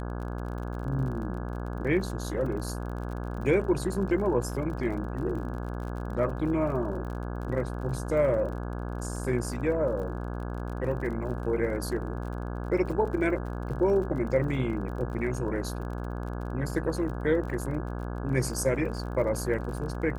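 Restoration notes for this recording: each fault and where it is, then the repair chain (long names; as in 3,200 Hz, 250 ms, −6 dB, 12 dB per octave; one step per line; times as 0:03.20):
mains buzz 60 Hz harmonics 28 −34 dBFS
surface crackle 41 per second −38 dBFS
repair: click removal
hum removal 60 Hz, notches 28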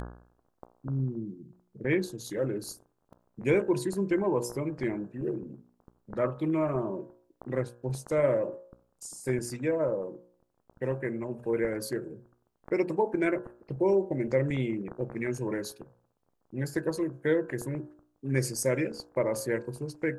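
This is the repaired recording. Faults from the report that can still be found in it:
none of them is left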